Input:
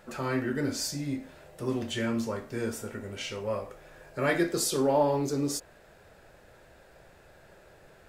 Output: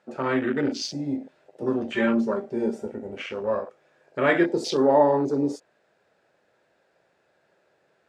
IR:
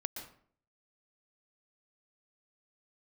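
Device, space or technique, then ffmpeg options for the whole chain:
over-cleaned archive recording: -filter_complex "[0:a]highpass=200,lowpass=6.6k,afwtdn=0.0141,asettb=1/sr,asplit=3[a][b][c];[a]atrim=end=1.934[d];[b]atrim=start=1.93:end=2.86,asetpts=PTS-STARTPTS,afade=t=in:d=0.004:c=qsin,afade=t=out:st=0.926:d=0.004:c=qsin,aecho=1:1:5.1:0.67,atrim=end_sample=41013[e];[c]atrim=start=2.856[f];[d][e]acrossfade=d=0.004:c1=hsin:c2=qsin[g];[g][f]acrossfade=d=0.004:c1=qsin:c2=hsin,volume=6.5dB"

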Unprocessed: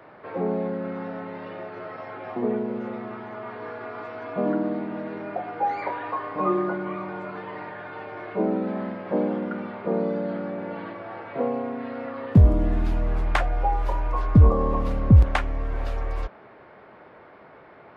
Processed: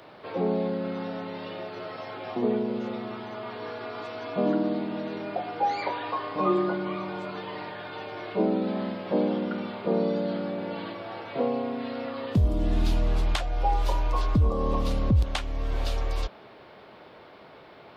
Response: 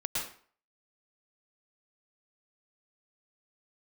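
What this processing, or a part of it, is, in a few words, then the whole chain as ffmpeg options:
over-bright horn tweeter: -af "highshelf=f=2.6k:t=q:w=1.5:g=10.5,alimiter=limit=-14dB:level=0:latency=1:release=370"

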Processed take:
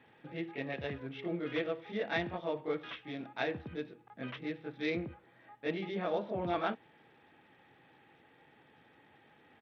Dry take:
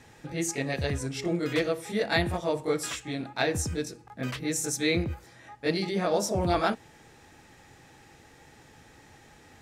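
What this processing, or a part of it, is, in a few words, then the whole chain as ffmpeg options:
Bluetooth headset: -filter_complex "[0:a]asettb=1/sr,asplit=3[a][b][c];[a]atrim=end=4.904[d];[b]atrim=start=4.9:end=5.55,asetpts=PTS-STARTPTS,afade=t=in:d=0.004:c=qsin,afade=t=out:st=0.646:d=0.004:c=qsin,highshelf=f=3k:g=-8.5[e];[c]atrim=start=5.546[f];[d][e]acrossfade=d=0.004:c1=hsin:c2=qsin[g];[g][f]acrossfade=d=0.004:c1=qsin:c2=hsin,highpass=160,aresample=8000,aresample=44100,volume=-7.5dB" -ar 32000 -c:a sbc -b:a 64k

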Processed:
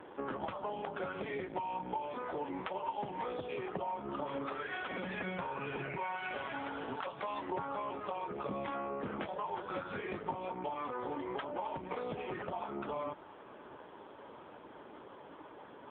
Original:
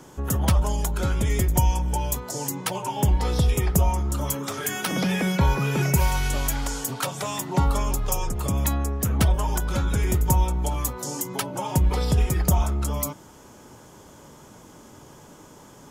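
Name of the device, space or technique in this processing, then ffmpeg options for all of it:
voicemail: -filter_complex "[0:a]asettb=1/sr,asplit=3[a][b][c];[a]atrim=end=8.494[d];[b]atrim=start=8.49:end=10.52,asetpts=PTS-STARTPTS,afade=t=in:d=0.004:c=qsin,afade=t=out:st=2.026:d=0.004:c=qsin,asplit=2[e][f];[f]adelay=20,volume=-4dB[g];[e][g]amix=inputs=2:normalize=0,atrim=end_sample=89523[h];[c]atrim=start=10.516[i];[d][h]acrossfade=d=0.004:c1=hsin:c2=qsin[j];[j][i]acrossfade=d=0.004:c1=qsin:c2=hsin,highpass=340,lowpass=2.9k,acompressor=threshold=-35dB:ratio=10,volume=2dB" -ar 8000 -c:a libopencore_amrnb -b:a 5900

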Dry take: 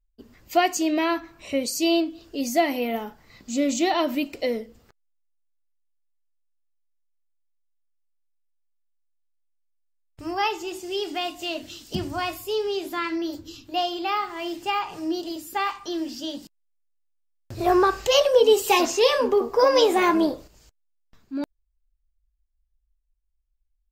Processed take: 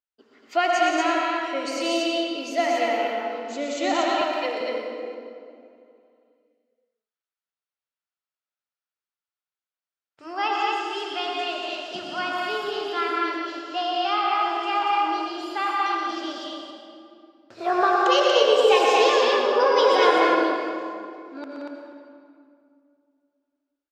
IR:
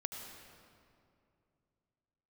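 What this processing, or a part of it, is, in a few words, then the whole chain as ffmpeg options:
station announcement: -filter_complex "[0:a]highpass=450,lowpass=4.7k,equalizer=f=1.4k:t=o:w=0.31:g=7,aecho=1:1:122.4|174.9|236.2:0.501|0.501|0.794[a];[1:a]atrim=start_sample=2205[b];[a][b]afir=irnorm=-1:irlink=0,asettb=1/sr,asplit=3[c][d][e];[c]atrim=end=4.214[f];[d]atrim=start=4.21:end=4.61,asetpts=PTS-STARTPTS,afade=t=in:d=0.004:c=qsin,afade=t=out:st=0.396:d=0.004:c=qsin,highpass=330[g];[e]atrim=start=4.606[h];[f][g]acrossfade=d=0.004:c1=hsin:c2=qsin[i];[i][h]acrossfade=d=0.004:c1=qsin:c2=hsin"

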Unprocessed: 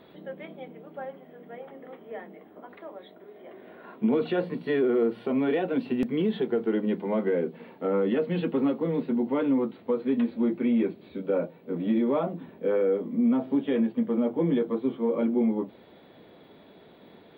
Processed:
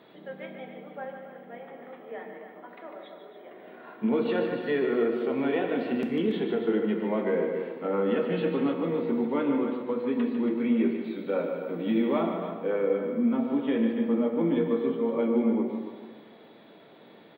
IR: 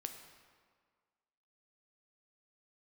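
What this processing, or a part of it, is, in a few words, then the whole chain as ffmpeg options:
stadium PA: -filter_complex "[0:a]asettb=1/sr,asplit=3[a][b][c];[a]atrim=end=11.044[d];[b]atrim=start=11.04:end=12.21,asetpts=PTS-STARTPTS,afade=t=in:d=0.004:c=qsin,afade=t=out:st=1.166:d=0.004:c=qsin,highshelf=f=2.8k:g=8.5[e];[c]atrim=start=12.206[f];[d][e]acrossfade=d=0.004:c1=hsin:c2=qsin[g];[g][f]acrossfade=d=0.004:c1=qsin:c2=hsin,highpass=120,equalizer=f=1.8k:t=o:w=3:g=4,aecho=1:1:148.7|282.8:0.398|0.316[h];[1:a]atrim=start_sample=2205[i];[h][i]afir=irnorm=-1:irlink=0"

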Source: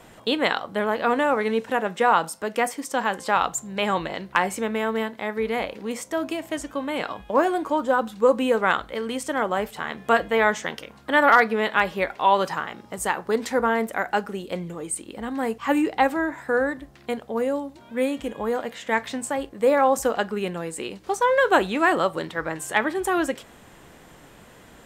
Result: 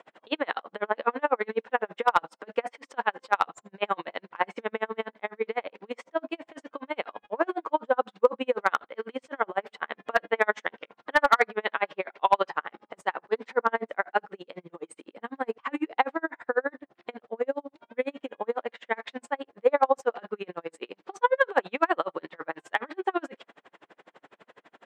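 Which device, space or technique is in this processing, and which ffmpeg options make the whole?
helicopter radio: -af "highpass=390,lowpass=2.8k,aeval=exprs='val(0)*pow(10,-39*(0.5-0.5*cos(2*PI*12*n/s))/20)':c=same,asoftclip=type=hard:threshold=-11.5dB,volume=3dB"

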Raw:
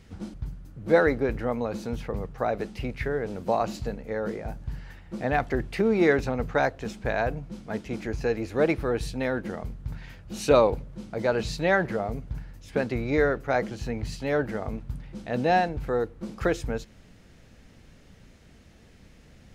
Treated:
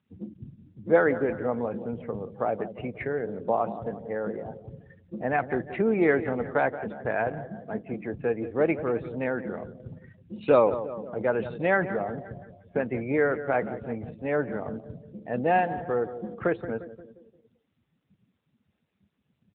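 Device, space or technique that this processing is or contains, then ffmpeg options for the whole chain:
mobile call with aggressive noise cancelling: -af "highpass=f=130:p=1,aecho=1:1:175|350|525|700|875|1050:0.237|0.135|0.077|0.0439|0.025|0.0143,afftdn=nr=26:nf=-40" -ar 8000 -c:a libopencore_amrnb -b:a 10200

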